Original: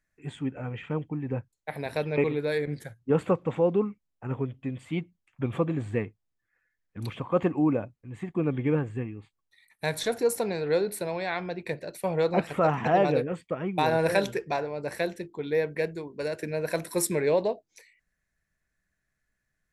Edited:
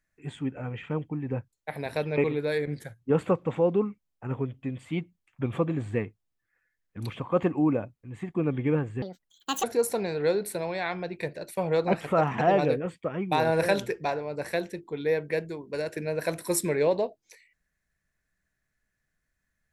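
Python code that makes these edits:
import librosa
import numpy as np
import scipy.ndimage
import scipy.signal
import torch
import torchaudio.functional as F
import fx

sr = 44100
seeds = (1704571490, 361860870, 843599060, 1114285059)

y = fx.edit(x, sr, fx.speed_span(start_s=9.02, length_s=1.08, speed=1.75), tone=tone)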